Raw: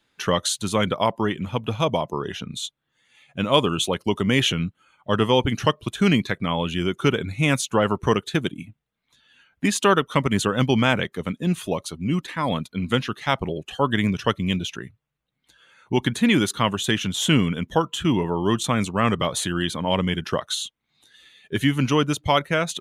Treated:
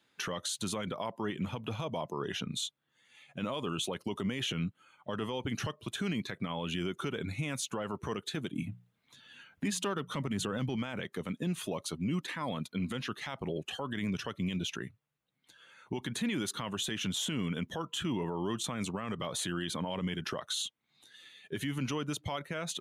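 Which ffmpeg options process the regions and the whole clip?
ffmpeg -i in.wav -filter_complex "[0:a]asettb=1/sr,asplit=3[link_01][link_02][link_03];[link_01]atrim=end=8.544[link_04];[link_02]atrim=start=8.54:end=10.76,asetpts=PTS-STARTPTS,afade=type=in:duration=0.004:curve=qsin,afade=type=out:start_time=2.216:duration=0.004:curve=qsin,bandreject=frequency=60:width_type=h:width=6,bandreject=frequency=120:width_type=h:width=6,bandreject=frequency=180:width_type=h:width=6,acontrast=32,lowshelf=frequency=200:gain=7[link_05];[link_03]atrim=start=10.756[link_06];[link_04][link_05]acrossfade=duration=0.004:curve1=hsin:curve2=qsin[link_07];[link_07][link_06]acrossfade=duration=0.004:curve1=qsin:curve2=hsin,acompressor=threshold=-24dB:ratio=3,highpass=110,alimiter=limit=-22dB:level=0:latency=1:release=40,volume=-3dB" out.wav

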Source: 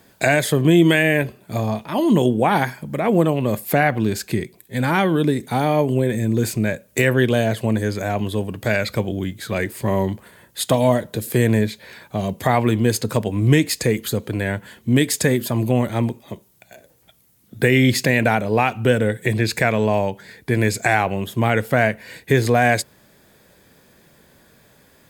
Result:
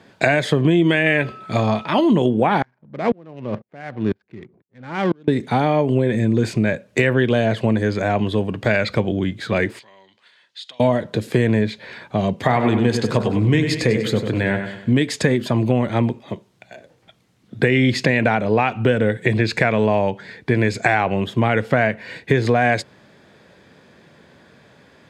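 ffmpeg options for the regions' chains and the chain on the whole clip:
ffmpeg -i in.wav -filter_complex "[0:a]asettb=1/sr,asplit=3[link_01][link_02][link_03];[link_01]atrim=end=1.064[link_04];[link_02]atrim=start=1.06:end=2.01,asetpts=PTS-STARTPTS,afade=type=in:duration=0.004:curve=qsin,afade=type=out:start_time=0.946:duration=0.004:curve=qsin,equalizer=frequency=3900:width=0.32:gain=6,aeval=exprs='val(0)+0.00891*sin(2*PI*1300*n/s)':channel_layout=same[link_05];[link_03]atrim=start=2.006[link_06];[link_04][link_05]acrossfade=duration=0.004:curve1=hsin:curve2=qsin[link_07];[link_07][link_06]acrossfade=duration=0.004:curve1=qsin:curve2=hsin,asettb=1/sr,asplit=3[link_08][link_09][link_10];[link_08]atrim=end=2.624[link_11];[link_09]atrim=start=2.62:end=5.28,asetpts=PTS-STARTPTS,afade=type=in:duration=0.004:curve=qsin,afade=type=out:start_time=2.656:duration=0.004:curve=qsin,lowpass=5900,adynamicsmooth=sensitivity=4:basefreq=500,aeval=exprs='val(0)*pow(10,-39*if(lt(mod(-2*n/s,1),2*abs(-2)/1000),1-mod(-2*n/s,1)/(2*abs(-2)/1000),(mod(-2*n/s,1)-2*abs(-2)/1000)/(1-2*abs(-2)/1000))/20)':channel_layout=same[link_12];[link_10]atrim=start=5.276[link_13];[link_11][link_12]acrossfade=duration=0.004:curve1=hsin:curve2=qsin[link_14];[link_14][link_13]acrossfade=duration=0.004:curve1=qsin:curve2=hsin,asettb=1/sr,asplit=3[link_15][link_16][link_17];[link_15]atrim=end=9.794[link_18];[link_16]atrim=start=9.79:end=10.8,asetpts=PTS-STARTPTS,afade=type=in:duration=0.004:curve=qsin,afade=type=out:start_time=1.006:duration=0.004:curve=qsin,acompressor=threshold=-32dB:ratio=3:attack=3.2:release=140:knee=1:detection=peak,bandpass=frequency=4100:width_type=q:width=1.6[link_19];[link_17]atrim=start=10.796[link_20];[link_18][link_19]acrossfade=duration=0.004:curve1=hsin:curve2=qsin[link_21];[link_21][link_20]acrossfade=duration=0.004:curve1=qsin:curve2=hsin,asettb=1/sr,asplit=3[link_22][link_23][link_24];[link_22]atrim=end=12.364[link_25];[link_23]atrim=start=12.36:end=14.92,asetpts=PTS-STARTPTS,afade=type=in:duration=0.004:curve=qsin,afade=type=out:start_time=2.556:duration=0.004:curve=qsin,bandreject=frequency=45.76:width_type=h:width=4,bandreject=frequency=91.52:width_type=h:width=4,bandreject=frequency=137.28:width_type=h:width=4,bandreject=frequency=183.04:width_type=h:width=4,bandreject=frequency=228.8:width_type=h:width=4,bandreject=frequency=274.56:width_type=h:width=4,bandreject=frequency=320.32:width_type=h:width=4,bandreject=frequency=366.08:width_type=h:width=4,bandreject=frequency=411.84:width_type=h:width=4,bandreject=frequency=457.6:width_type=h:width=4,bandreject=frequency=503.36:width_type=h:width=4,bandreject=frequency=549.12:width_type=h:width=4,bandreject=frequency=594.88:width_type=h:width=4,bandreject=frequency=640.64:width_type=h:width=4,bandreject=frequency=686.4:width_type=h:width=4,bandreject=frequency=732.16:width_type=h:width=4,bandreject=frequency=777.92:width_type=h:width=4,bandreject=frequency=823.68:width_type=h:width=4,bandreject=frequency=869.44:width_type=h:width=4,bandreject=frequency=915.2:width_type=h:width=4,bandreject=frequency=960.96:width_type=h:width=4,bandreject=frequency=1006.72:width_type=h:width=4,bandreject=frequency=1052.48:width_type=h:width=4,bandreject=frequency=1098.24:width_type=h:width=4,bandreject=frequency=1144:width_type=h:width=4,bandreject=frequency=1189.76:width_type=h:width=4,bandreject=frequency=1235.52:width_type=h:width=4,bandreject=frequency=1281.28:width_type=h:width=4,bandreject=frequency=1327.04:width_type=h:width=4,bandreject=frequency=1372.8:width_type=h:width=4,bandreject=frequency=1418.56:width_type=h:width=4,bandreject=frequency=1464.32:width_type=h:width=4,bandreject=frequency=1510.08:width_type=h:width=4,bandreject=frequency=1555.84:width_type=h:width=4,bandreject=frequency=1601.6:width_type=h:width=4,bandreject=frequency=1647.36:width_type=h:width=4,bandreject=frequency=1693.12:width_type=h:width=4,aecho=1:1:97|194|291|388|485:0.355|0.16|0.0718|0.0323|0.0145,atrim=end_sample=112896[link_26];[link_24]atrim=start=14.916[link_27];[link_25][link_26]acrossfade=duration=0.004:curve1=hsin:curve2=qsin[link_28];[link_28][link_27]acrossfade=duration=0.004:curve1=qsin:curve2=hsin,lowpass=4100,acompressor=threshold=-17dB:ratio=4,highpass=91,volume=4.5dB" out.wav

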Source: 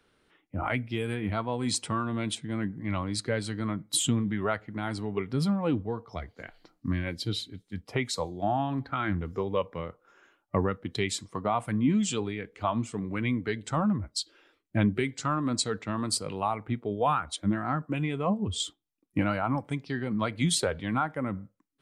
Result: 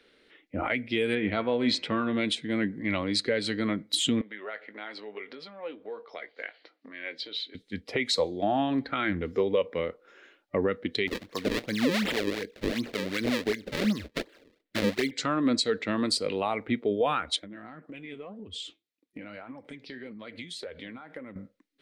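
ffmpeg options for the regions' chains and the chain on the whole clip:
ffmpeg -i in.wav -filter_complex "[0:a]asettb=1/sr,asplit=3[link_01][link_02][link_03];[link_01]atrim=end=1.154[link_04];[link_02]atrim=start=1.15:end=2.17,asetpts=PTS-STARTPTS,afade=type=in:duration=0.004:curve=qsin,afade=type=out:start_time=1.016:duration=0.004:curve=qsin,lowpass=3800,bandreject=frequency=87.3:width_type=h:width=4,bandreject=frequency=174.6:width_type=h:width=4,bandreject=frequency=261.9:width_type=h:width=4,bandreject=frequency=349.2:width_type=h:width=4,bandreject=frequency=436.5:width_type=h:width=4,bandreject=frequency=523.8:width_type=h:width=4,bandreject=frequency=611.1:width_type=h:width=4,bandreject=frequency=698.4:width_type=h:width=4,bandreject=frequency=785.7:width_type=h:width=4,bandreject=frequency=873:width_type=h:width=4,bandreject=frequency=960.3:width_type=h:width=4,bandreject=frequency=1047.6:width_type=h:width=4,bandreject=frequency=1134.9:width_type=h:width=4,bandreject=frequency=1222.2:width_type=h:width=4,bandreject=frequency=1309.5:width_type=h:width=4,bandreject=frequency=1396.8:width_type=h:width=4,bandreject=frequency=1484.1:width_type=h:width=4,bandreject=frequency=1571.4:width_type=h:width=4,bandreject=frequency=1658.7:width_type=h:width=4,bandreject=frequency=1746:width_type=h:width=4,bandreject=frequency=1833.3:width_type=h:width=4,bandreject=frequency=1920.6:width_type=h:width=4,bandreject=frequency=2007.9:width_type=h:width=4,bandreject=frequency=2095.2:width_type=h:width=4,bandreject=frequency=2182.5:width_type=h:width=4,bandreject=frequency=2269.8:width_type=h:width=4,bandreject=frequency=2357.1:width_type=h:width=4,bandreject=frequency=2444.4:width_type=h:width=4,bandreject=frequency=2531.7:width_type=h:width=4,bandreject=frequency=2619:width_type=h:width=4,bandreject=frequency=2706.3:width_type=h:width=4[link_05];[link_03]atrim=start=2.166[link_06];[link_04][link_05]acrossfade=duration=0.004:curve1=hsin:curve2=qsin[link_07];[link_07][link_06]acrossfade=duration=0.004:curve1=qsin:curve2=hsin,asettb=1/sr,asplit=3[link_08][link_09][link_10];[link_08]atrim=end=4.214[link_11];[link_09]atrim=start=4.21:end=7.55,asetpts=PTS-STARTPTS,afade=type=in:duration=0.004:curve=qsin,afade=type=out:start_time=3.336:duration=0.004:curve=qsin,acompressor=threshold=-34dB:ratio=8:attack=3.2:release=140:knee=1:detection=peak,highpass=560,lowpass=3700,asplit=2[link_12][link_13];[link_13]adelay=19,volume=-12dB[link_14];[link_12][link_14]amix=inputs=2:normalize=0,atrim=end_sample=147294[link_15];[link_10]atrim=start=7.546[link_16];[link_11][link_15]acrossfade=duration=0.004:curve1=hsin:curve2=qsin[link_17];[link_17][link_16]acrossfade=duration=0.004:curve1=qsin:curve2=hsin,asettb=1/sr,asplit=3[link_18][link_19][link_20];[link_18]atrim=end=11.074[link_21];[link_19]atrim=start=11.07:end=15.11,asetpts=PTS-STARTPTS,afade=type=in:duration=0.004:curve=qsin,afade=type=out:start_time=4.036:duration=0.004:curve=qsin,acrusher=samples=35:mix=1:aa=0.000001:lfo=1:lforange=56:lforate=2.7,acrossover=split=660[link_22][link_23];[link_22]aeval=exprs='val(0)*(1-0.5/2+0.5/2*cos(2*PI*5*n/s))':channel_layout=same[link_24];[link_23]aeval=exprs='val(0)*(1-0.5/2-0.5/2*cos(2*PI*5*n/s))':channel_layout=same[link_25];[link_24][link_25]amix=inputs=2:normalize=0[link_26];[link_20]atrim=start=15.106[link_27];[link_21][link_26]acrossfade=duration=0.004:curve1=hsin:curve2=qsin[link_28];[link_28][link_27]acrossfade=duration=0.004:curve1=qsin:curve2=hsin,asettb=1/sr,asplit=3[link_29][link_30][link_31];[link_29]atrim=end=17.394[link_32];[link_30]atrim=start=17.39:end=21.36,asetpts=PTS-STARTPTS,afade=type=in:duration=0.004:curve=qsin,afade=type=out:start_time=3.966:duration=0.004:curve=qsin,highpass=45,acompressor=threshold=-37dB:ratio=16:attack=3.2:release=140:knee=1:detection=peak,flanger=delay=0.9:depth=8.5:regen=68:speed=1.8:shape=sinusoidal[link_33];[link_31]atrim=start=21.356[link_34];[link_32][link_33]acrossfade=duration=0.004:curve1=hsin:curve2=qsin[link_35];[link_35][link_34]acrossfade=duration=0.004:curve1=qsin:curve2=hsin,equalizer=frequency=125:width_type=o:width=1:gain=-6,equalizer=frequency=250:width_type=o:width=1:gain=7,equalizer=frequency=500:width_type=o:width=1:gain=11,equalizer=frequency=1000:width_type=o:width=1:gain=-4,equalizer=frequency=2000:width_type=o:width=1:gain=11,equalizer=frequency=4000:width_type=o:width=1:gain=11,alimiter=limit=-13dB:level=0:latency=1:release=123,volume=-3dB" out.wav

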